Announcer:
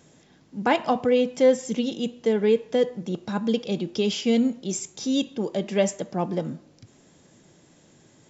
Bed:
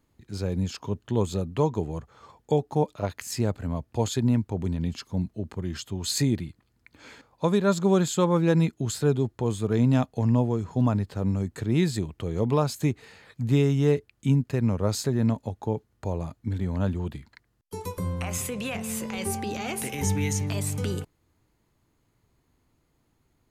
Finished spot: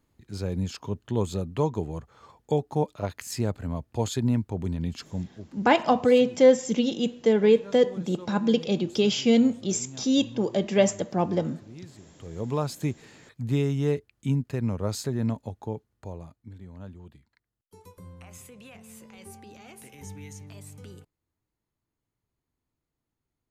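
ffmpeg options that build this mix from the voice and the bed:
-filter_complex "[0:a]adelay=5000,volume=1.5dB[a];[1:a]volume=16.5dB,afade=t=out:st=5.01:d=0.58:silence=0.1,afade=t=in:st=12.05:d=0.59:silence=0.125893,afade=t=out:st=15.46:d=1.08:silence=0.237137[b];[a][b]amix=inputs=2:normalize=0"

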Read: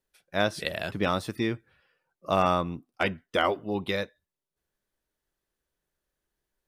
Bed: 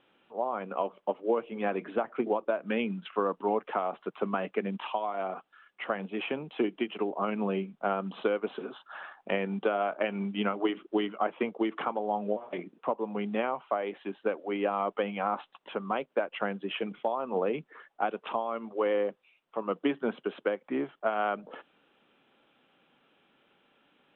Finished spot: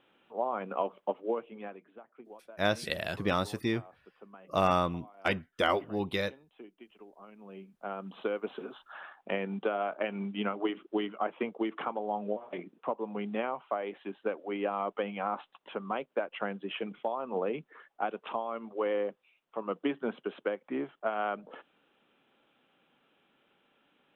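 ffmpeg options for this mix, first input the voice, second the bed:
-filter_complex "[0:a]adelay=2250,volume=-2.5dB[a];[1:a]volume=18dB,afade=t=out:st=0.98:d=0.84:silence=0.0891251,afade=t=in:st=7.43:d=1.07:silence=0.11885[b];[a][b]amix=inputs=2:normalize=0"

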